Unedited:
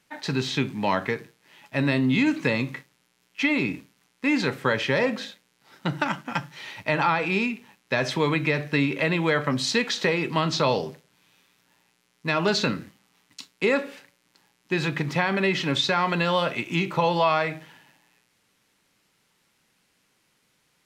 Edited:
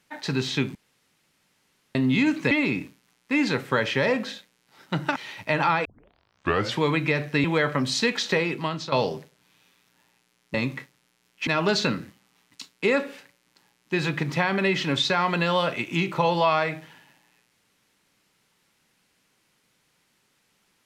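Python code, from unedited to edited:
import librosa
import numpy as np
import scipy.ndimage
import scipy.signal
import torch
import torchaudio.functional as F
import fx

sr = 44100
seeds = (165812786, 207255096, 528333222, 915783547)

y = fx.edit(x, sr, fx.room_tone_fill(start_s=0.75, length_s=1.2),
    fx.move(start_s=2.51, length_s=0.93, to_s=12.26),
    fx.cut(start_s=6.09, length_s=0.46),
    fx.tape_start(start_s=7.24, length_s=0.96),
    fx.cut(start_s=8.83, length_s=0.33),
    fx.fade_out_to(start_s=10.12, length_s=0.52, floor_db=-12.5), tone=tone)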